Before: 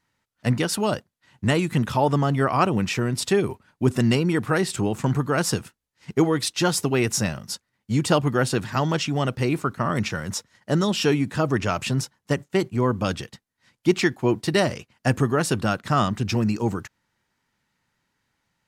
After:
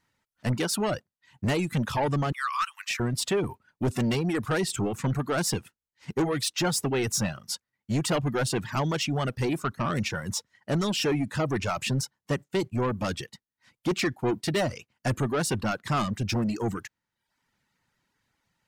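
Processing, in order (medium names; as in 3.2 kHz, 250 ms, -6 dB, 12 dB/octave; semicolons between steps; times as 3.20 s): 2.32–3.00 s: Chebyshev high-pass 1.1 kHz, order 5; saturation -20.5 dBFS, distortion -10 dB; reverb removal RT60 0.66 s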